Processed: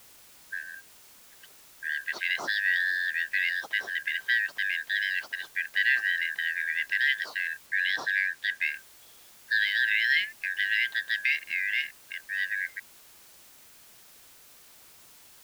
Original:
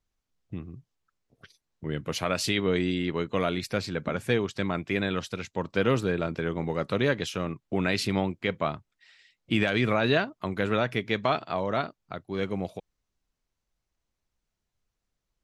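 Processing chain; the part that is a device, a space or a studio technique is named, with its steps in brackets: split-band scrambled radio (four frequency bands reordered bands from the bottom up 4123; band-pass 400–3000 Hz; white noise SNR 23 dB); 7.66–8.62 s: treble shelf 9.6 kHz -5 dB

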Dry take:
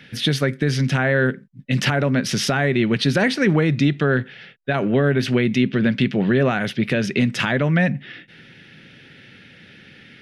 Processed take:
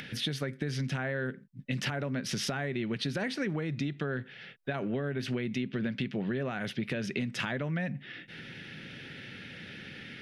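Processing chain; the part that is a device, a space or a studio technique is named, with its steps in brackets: upward and downward compression (upward compressor, threshold -28 dBFS; compression, threshold -22 dBFS, peak gain reduction 9.5 dB); trim -7.5 dB

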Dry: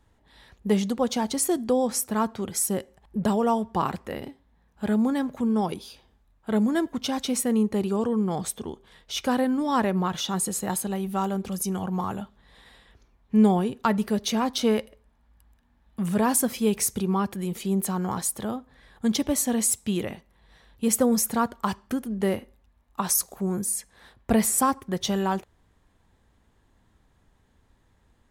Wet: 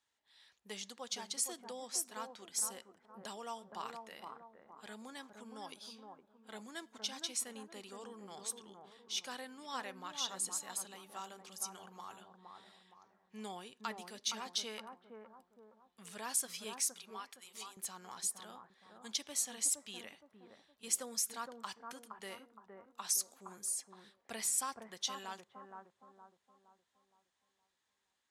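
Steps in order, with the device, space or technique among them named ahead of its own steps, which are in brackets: piezo pickup straight into a mixer (low-pass 5.8 kHz 12 dB/octave; differentiator); 16.89–17.77 s: high-pass 790 Hz 12 dB/octave; bucket-brigade echo 466 ms, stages 4096, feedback 41%, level -5 dB; trim -1 dB

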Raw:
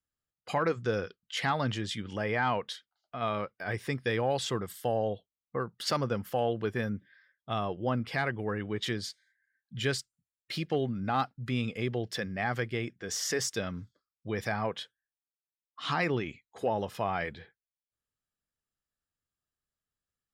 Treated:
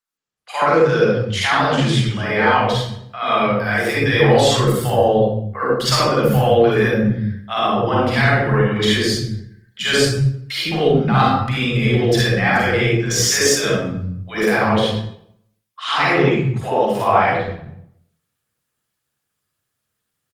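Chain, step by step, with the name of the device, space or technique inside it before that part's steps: 16.85–17.39 s: dynamic bell 810 Hz, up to +6 dB, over -41 dBFS, Q 0.82; three bands offset in time highs, mids, lows 80/270 ms, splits 180/680 Hz; far-field microphone of a smart speaker (reverberation RT60 0.70 s, pre-delay 40 ms, DRR -6 dB; high-pass 100 Hz 24 dB/octave; level rider gain up to 12 dB; Opus 24 kbps 48 kHz)

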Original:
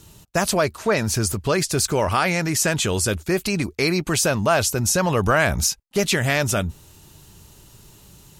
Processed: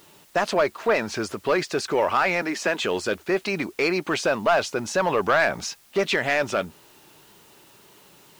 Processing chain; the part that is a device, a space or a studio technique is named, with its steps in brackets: 2.42–2.84 s: elliptic high-pass 180 Hz; tape answering machine (band-pass 330–3100 Hz; saturation -13.5 dBFS, distortion -15 dB; wow and flutter; white noise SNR 31 dB); trim +2 dB

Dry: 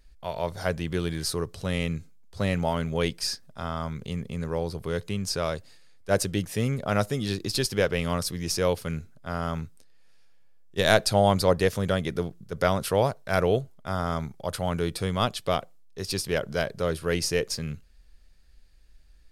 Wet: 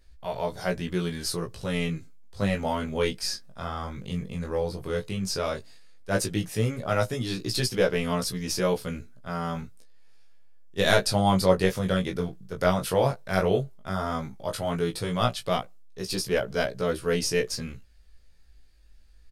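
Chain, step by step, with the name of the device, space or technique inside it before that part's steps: double-tracked vocal (doubling 16 ms -8 dB; chorus 0.12 Hz, delay 16 ms, depth 6.1 ms); trim +2 dB

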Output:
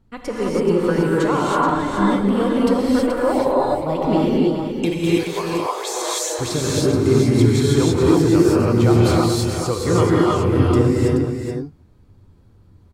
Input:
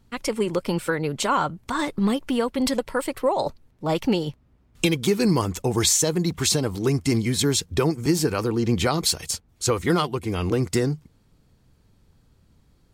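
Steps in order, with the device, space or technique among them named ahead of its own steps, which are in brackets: 4.90–6.39 s: inverse Chebyshev high-pass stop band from 160 Hz, stop band 60 dB; through cloth (treble shelf 2 kHz -11.5 dB); delay 428 ms -7 dB; gated-style reverb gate 350 ms rising, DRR -6 dB

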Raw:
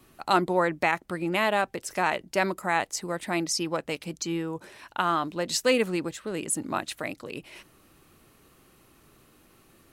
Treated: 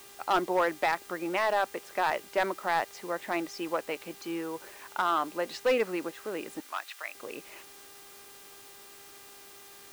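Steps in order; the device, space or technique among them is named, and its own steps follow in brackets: aircraft radio (band-pass 380–2300 Hz; hard clipper -19 dBFS, distortion -13 dB; mains buzz 400 Hz, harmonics 27, -56 dBFS -3 dB/octave; white noise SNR 20 dB); 6.60–7.15 s: high-pass 1.2 kHz 12 dB/octave

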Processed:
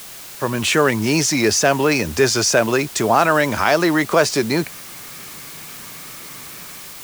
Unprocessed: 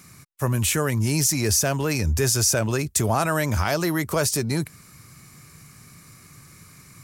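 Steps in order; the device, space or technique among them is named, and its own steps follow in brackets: dictaphone (band-pass 260–4400 Hz; level rider; wow and flutter; white noise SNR 17 dB)

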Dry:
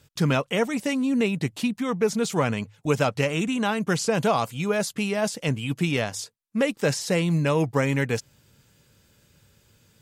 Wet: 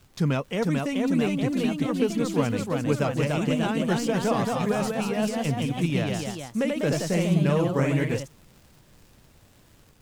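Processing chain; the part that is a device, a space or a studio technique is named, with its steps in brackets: record under a worn stylus (tracing distortion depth 0.02 ms; crackle 59 per s -36 dBFS; pink noise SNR 32 dB); bass shelf 490 Hz +6.5 dB; ever faster or slower copies 460 ms, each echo +1 st, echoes 3; trim -7 dB

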